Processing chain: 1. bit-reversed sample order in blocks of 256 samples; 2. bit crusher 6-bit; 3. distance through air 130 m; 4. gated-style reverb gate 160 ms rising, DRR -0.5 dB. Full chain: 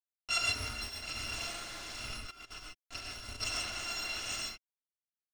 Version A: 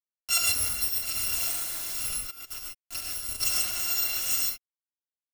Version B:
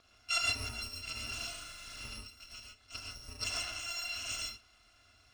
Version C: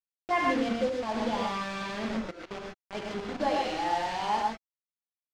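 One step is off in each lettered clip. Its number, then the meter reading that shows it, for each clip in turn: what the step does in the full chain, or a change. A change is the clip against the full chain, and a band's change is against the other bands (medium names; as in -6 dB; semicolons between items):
3, 8 kHz band +13.0 dB; 2, distortion -8 dB; 1, 8 kHz band -19.0 dB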